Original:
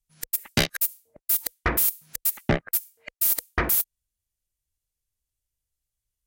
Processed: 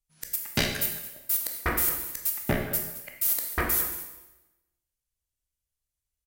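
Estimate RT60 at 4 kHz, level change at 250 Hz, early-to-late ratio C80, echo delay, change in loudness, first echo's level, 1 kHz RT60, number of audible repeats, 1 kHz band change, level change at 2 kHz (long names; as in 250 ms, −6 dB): 0.95 s, −2.5 dB, 7.0 dB, 219 ms, −3.0 dB, −15.0 dB, 1.0 s, 1, −2.0 dB, −2.0 dB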